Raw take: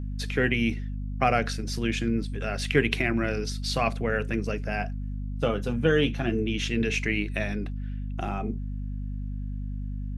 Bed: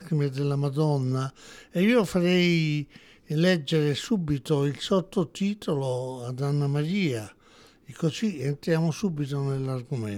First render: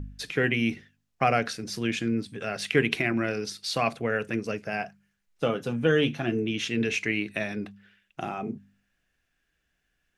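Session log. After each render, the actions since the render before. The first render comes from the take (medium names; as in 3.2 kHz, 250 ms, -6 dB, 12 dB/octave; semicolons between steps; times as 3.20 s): de-hum 50 Hz, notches 5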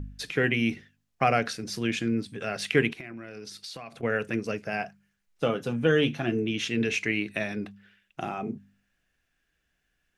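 2.90–4.03 s: compression 8:1, threshold -37 dBFS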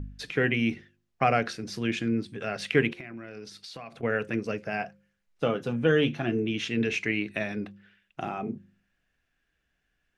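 treble shelf 6.6 kHz -10.5 dB; de-hum 175.9 Hz, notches 3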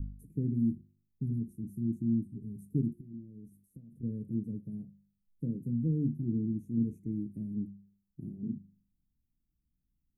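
0.67–3.03 s: time-frequency box 440–3600 Hz -24 dB; inverse Chebyshev band-stop 770–5000 Hz, stop band 60 dB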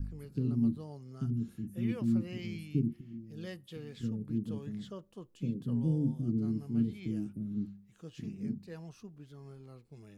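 add bed -22 dB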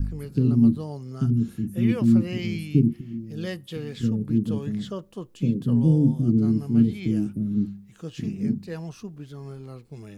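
trim +11.5 dB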